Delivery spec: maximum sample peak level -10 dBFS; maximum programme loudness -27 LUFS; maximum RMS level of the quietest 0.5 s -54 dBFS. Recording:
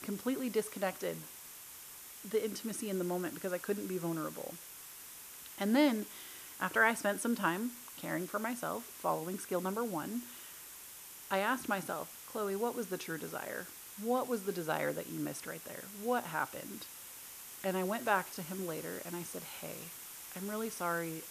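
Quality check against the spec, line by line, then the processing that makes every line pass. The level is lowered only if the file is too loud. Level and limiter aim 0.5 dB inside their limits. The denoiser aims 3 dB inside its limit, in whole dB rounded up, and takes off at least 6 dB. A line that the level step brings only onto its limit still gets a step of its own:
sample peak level -14.5 dBFS: pass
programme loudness -37.0 LUFS: pass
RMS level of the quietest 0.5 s -51 dBFS: fail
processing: noise reduction 6 dB, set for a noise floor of -51 dBFS

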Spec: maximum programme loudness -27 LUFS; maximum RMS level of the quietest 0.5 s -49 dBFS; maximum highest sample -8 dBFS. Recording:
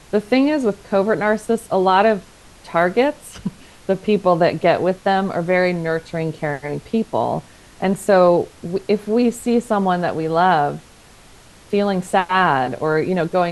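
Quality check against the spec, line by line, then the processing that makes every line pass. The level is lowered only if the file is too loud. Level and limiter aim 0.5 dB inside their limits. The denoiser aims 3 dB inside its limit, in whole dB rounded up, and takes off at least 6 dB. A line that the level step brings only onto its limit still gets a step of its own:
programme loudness -18.5 LUFS: fail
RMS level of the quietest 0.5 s -46 dBFS: fail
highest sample -3.5 dBFS: fail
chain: trim -9 dB

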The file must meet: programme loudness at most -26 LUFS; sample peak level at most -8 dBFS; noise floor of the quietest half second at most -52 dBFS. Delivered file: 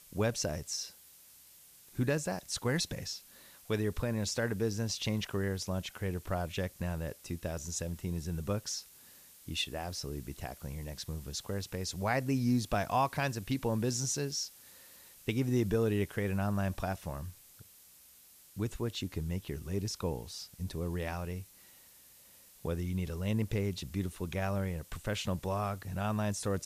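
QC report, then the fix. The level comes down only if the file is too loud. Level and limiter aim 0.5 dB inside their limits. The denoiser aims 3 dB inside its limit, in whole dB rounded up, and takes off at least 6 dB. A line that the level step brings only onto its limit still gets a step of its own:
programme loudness -35.0 LUFS: pass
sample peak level -17.5 dBFS: pass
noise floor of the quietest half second -59 dBFS: pass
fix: none needed

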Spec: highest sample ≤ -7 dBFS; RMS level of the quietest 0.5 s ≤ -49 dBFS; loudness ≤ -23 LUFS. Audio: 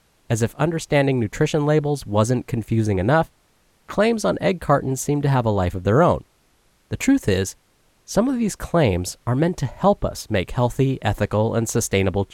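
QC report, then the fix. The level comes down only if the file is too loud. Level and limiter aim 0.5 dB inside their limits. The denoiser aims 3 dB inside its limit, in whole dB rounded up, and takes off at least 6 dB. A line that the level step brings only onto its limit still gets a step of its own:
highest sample -6.0 dBFS: fail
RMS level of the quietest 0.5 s -61 dBFS: pass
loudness -21.0 LUFS: fail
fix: trim -2.5 dB

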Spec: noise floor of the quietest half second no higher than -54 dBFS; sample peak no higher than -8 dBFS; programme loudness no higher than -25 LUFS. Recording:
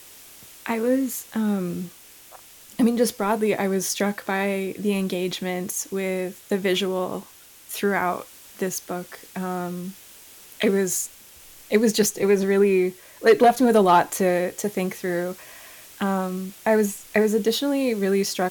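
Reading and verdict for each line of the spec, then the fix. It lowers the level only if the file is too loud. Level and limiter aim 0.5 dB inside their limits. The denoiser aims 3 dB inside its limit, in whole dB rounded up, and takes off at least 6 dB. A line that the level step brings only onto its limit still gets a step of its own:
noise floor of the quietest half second -47 dBFS: fail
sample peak -5.5 dBFS: fail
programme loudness -23.0 LUFS: fail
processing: noise reduction 8 dB, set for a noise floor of -47 dBFS; trim -2.5 dB; peak limiter -8.5 dBFS

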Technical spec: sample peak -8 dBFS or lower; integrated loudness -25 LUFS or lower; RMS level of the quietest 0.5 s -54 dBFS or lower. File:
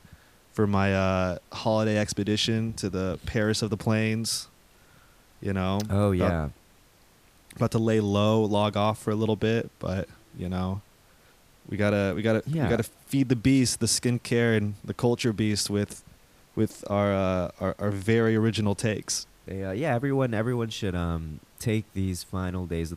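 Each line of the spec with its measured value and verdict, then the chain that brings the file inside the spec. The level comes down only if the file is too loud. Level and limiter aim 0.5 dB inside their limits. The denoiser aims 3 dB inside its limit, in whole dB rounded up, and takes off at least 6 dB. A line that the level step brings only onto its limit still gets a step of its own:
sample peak -9.5 dBFS: pass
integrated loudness -26.5 LUFS: pass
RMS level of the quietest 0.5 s -58 dBFS: pass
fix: none needed

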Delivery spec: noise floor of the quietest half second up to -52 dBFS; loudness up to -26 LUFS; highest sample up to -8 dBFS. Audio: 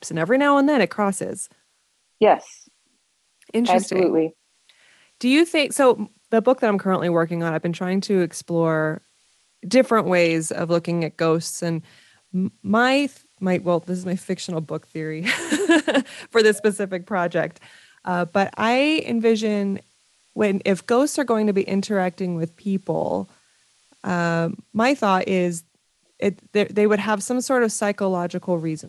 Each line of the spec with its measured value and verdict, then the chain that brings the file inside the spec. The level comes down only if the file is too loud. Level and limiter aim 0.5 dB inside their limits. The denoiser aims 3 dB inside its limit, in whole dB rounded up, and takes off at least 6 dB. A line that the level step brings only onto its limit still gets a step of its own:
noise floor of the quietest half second -66 dBFS: pass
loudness -21.5 LUFS: fail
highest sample -4.0 dBFS: fail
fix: trim -5 dB

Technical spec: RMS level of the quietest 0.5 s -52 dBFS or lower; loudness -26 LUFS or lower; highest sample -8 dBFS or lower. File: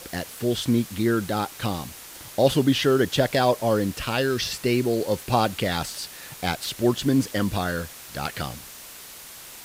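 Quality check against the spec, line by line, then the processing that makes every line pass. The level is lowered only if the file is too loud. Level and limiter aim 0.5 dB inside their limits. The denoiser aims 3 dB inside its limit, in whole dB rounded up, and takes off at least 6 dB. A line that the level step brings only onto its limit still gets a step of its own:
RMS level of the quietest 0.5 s -42 dBFS: fail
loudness -24.5 LUFS: fail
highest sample -6.5 dBFS: fail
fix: noise reduction 11 dB, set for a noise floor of -42 dBFS; trim -2 dB

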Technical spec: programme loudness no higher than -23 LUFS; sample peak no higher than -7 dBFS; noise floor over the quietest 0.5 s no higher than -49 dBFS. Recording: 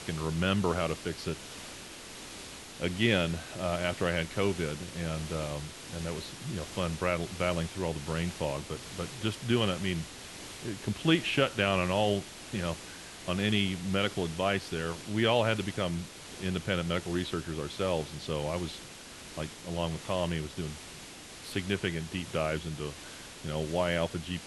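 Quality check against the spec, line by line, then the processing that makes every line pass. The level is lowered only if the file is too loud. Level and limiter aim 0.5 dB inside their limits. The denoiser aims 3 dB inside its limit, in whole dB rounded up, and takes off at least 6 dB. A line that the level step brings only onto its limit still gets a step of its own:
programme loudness -32.0 LUFS: pass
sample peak -12.0 dBFS: pass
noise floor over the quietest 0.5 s -47 dBFS: fail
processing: noise reduction 6 dB, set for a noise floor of -47 dBFS

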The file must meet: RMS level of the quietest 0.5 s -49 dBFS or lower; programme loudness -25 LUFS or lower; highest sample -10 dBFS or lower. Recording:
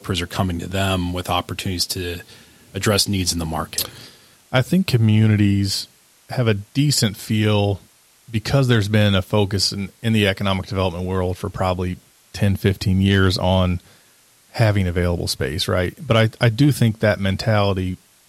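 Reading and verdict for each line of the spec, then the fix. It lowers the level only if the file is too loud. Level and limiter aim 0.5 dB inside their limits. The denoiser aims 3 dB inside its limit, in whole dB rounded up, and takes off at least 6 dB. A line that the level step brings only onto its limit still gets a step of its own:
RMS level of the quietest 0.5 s -54 dBFS: pass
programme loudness -20.0 LUFS: fail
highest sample -4.0 dBFS: fail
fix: trim -5.5 dB; peak limiter -10.5 dBFS

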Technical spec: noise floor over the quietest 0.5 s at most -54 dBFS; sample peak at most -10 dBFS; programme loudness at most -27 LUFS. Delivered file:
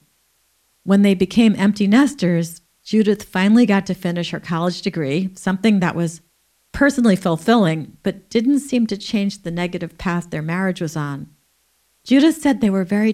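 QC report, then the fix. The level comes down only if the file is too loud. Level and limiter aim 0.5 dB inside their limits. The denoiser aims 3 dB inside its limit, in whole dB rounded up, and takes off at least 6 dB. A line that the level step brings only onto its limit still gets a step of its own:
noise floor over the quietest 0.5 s -63 dBFS: pass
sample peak -3.5 dBFS: fail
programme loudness -18.0 LUFS: fail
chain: trim -9.5 dB

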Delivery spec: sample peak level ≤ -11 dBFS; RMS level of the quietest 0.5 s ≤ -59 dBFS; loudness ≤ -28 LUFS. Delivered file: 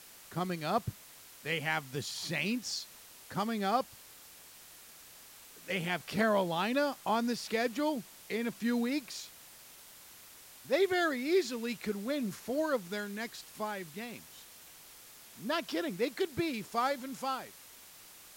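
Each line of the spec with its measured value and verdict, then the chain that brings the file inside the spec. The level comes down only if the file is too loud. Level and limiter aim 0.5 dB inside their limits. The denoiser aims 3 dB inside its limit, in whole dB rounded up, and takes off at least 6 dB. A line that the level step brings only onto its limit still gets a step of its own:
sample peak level -17.0 dBFS: pass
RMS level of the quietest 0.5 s -54 dBFS: fail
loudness -34.0 LUFS: pass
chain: noise reduction 8 dB, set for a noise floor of -54 dBFS

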